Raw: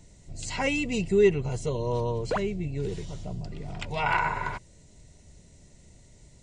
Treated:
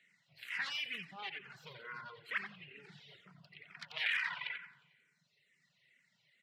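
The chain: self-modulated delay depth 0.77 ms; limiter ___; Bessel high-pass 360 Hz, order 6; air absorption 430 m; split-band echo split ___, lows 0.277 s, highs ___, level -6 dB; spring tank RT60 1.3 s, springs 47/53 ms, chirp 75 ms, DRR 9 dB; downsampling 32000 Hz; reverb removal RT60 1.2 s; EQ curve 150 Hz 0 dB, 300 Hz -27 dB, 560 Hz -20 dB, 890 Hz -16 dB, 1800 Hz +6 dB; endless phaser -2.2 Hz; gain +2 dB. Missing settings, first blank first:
-20 dBFS, 420 Hz, 89 ms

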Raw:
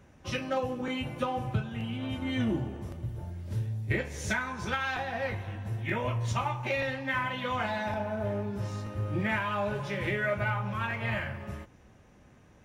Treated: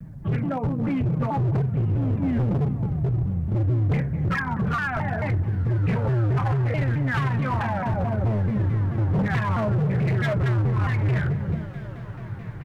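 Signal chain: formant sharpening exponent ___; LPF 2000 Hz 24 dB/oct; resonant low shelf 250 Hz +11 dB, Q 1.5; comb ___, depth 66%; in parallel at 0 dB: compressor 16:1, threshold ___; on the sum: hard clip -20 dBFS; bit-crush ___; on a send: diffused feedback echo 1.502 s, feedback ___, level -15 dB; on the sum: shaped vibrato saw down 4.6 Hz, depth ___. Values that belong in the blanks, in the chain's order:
1.5, 6.7 ms, -27 dBFS, 12-bit, 42%, 250 cents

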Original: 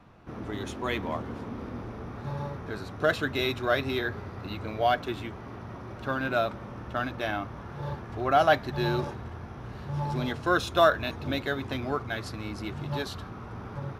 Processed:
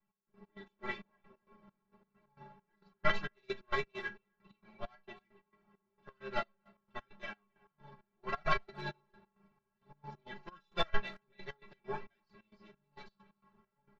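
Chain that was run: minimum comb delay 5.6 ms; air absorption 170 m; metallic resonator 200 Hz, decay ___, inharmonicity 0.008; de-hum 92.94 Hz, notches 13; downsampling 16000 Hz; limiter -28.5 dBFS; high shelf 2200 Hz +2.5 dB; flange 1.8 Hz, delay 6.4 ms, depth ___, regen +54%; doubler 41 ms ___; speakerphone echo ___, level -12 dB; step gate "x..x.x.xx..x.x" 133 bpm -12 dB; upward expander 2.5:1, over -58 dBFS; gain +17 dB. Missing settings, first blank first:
0.2 s, 1.7 ms, -12.5 dB, 0.27 s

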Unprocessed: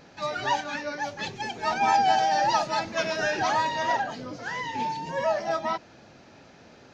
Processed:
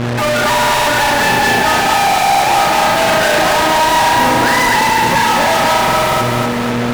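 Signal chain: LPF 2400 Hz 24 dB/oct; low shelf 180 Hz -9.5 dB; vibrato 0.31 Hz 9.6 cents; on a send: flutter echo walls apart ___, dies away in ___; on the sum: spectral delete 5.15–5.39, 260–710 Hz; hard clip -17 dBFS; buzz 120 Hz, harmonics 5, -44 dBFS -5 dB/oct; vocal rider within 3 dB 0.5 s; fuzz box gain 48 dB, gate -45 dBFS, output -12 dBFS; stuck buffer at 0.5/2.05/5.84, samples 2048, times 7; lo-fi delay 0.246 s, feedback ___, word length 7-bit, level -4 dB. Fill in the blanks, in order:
6 m, 0.78 s, 55%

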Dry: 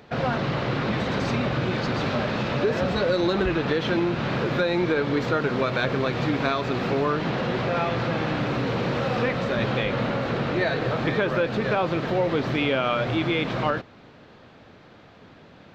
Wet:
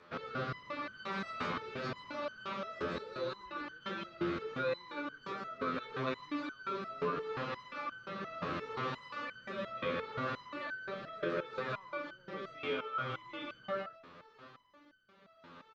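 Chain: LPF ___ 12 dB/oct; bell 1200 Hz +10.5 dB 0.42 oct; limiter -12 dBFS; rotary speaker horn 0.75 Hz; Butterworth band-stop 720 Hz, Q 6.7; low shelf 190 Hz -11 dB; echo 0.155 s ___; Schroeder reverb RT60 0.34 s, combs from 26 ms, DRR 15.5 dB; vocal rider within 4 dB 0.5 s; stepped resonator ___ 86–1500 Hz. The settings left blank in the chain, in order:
6700 Hz, -5 dB, 5.7 Hz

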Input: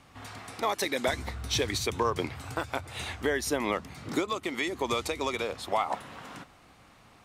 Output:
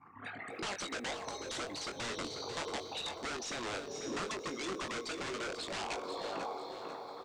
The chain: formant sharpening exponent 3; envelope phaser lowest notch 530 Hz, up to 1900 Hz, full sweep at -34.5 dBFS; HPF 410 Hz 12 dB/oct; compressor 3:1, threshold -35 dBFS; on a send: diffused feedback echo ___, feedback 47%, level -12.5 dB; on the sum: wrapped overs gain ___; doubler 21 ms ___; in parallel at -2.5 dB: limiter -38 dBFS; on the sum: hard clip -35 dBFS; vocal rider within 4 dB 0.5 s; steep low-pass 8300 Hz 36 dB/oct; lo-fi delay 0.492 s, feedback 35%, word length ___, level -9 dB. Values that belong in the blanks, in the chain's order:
0.602 s, 34 dB, -8 dB, 11-bit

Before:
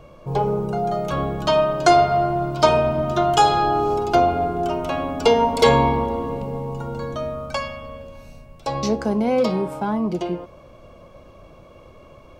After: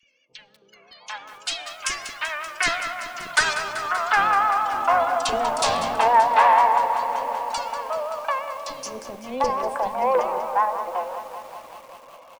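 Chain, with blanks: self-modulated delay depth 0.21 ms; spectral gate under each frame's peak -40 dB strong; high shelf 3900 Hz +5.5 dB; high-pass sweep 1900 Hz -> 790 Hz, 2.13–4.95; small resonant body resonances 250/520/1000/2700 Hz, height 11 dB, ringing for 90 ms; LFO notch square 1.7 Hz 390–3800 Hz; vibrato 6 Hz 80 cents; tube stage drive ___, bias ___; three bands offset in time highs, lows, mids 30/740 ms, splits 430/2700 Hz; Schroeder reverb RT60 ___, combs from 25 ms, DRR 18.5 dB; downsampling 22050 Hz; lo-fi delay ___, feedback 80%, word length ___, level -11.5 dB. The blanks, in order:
6 dB, 0.35, 1.2 s, 0.192 s, 7-bit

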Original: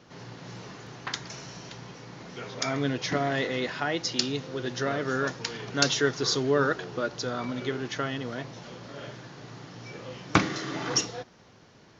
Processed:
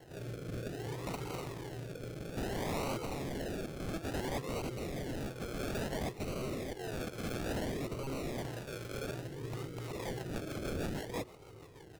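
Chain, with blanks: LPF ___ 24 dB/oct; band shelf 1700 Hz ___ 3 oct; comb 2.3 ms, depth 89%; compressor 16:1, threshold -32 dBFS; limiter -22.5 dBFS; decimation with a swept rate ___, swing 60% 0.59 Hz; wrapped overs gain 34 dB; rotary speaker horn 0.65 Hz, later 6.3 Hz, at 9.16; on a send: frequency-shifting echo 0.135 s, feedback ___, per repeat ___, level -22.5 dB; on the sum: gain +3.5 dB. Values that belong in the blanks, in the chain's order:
6300 Hz, -8 dB, 36×, 57%, +140 Hz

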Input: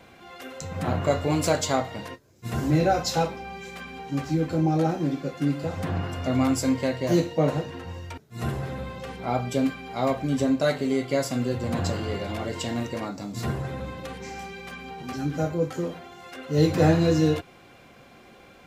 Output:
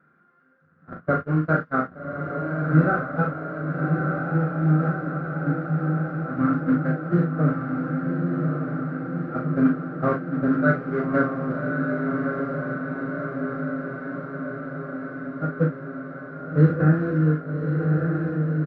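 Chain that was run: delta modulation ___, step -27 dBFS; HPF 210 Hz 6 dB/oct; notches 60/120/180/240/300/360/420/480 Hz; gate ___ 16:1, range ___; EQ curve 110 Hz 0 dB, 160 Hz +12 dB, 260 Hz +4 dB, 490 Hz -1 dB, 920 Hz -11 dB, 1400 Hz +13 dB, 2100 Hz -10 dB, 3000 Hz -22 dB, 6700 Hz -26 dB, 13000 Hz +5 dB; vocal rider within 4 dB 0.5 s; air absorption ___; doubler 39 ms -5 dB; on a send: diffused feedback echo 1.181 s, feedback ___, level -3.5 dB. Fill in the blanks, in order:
32 kbps, -24 dBFS, -33 dB, 140 m, 72%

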